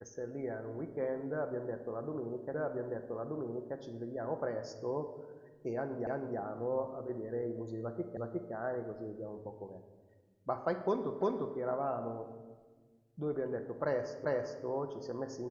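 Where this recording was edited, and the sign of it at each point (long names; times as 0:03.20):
0:02.54: the same again, the last 1.23 s
0:06.07: the same again, the last 0.32 s
0:08.17: the same again, the last 0.36 s
0:11.21: the same again, the last 0.35 s
0:14.25: the same again, the last 0.4 s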